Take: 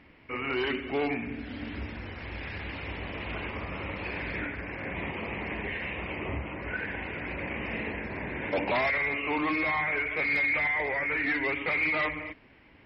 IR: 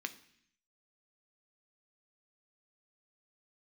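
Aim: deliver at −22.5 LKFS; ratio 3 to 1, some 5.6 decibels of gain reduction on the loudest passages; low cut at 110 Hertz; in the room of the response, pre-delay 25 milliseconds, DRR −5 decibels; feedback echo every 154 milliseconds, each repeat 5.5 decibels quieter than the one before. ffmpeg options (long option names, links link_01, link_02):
-filter_complex "[0:a]highpass=110,acompressor=threshold=-32dB:ratio=3,aecho=1:1:154|308|462|616|770|924|1078:0.531|0.281|0.149|0.079|0.0419|0.0222|0.0118,asplit=2[link_01][link_02];[1:a]atrim=start_sample=2205,adelay=25[link_03];[link_02][link_03]afir=irnorm=-1:irlink=0,volume=4.5dB[link_04];[link_01][link_04]amix=inputs=2:normalize=0,volume=4dB"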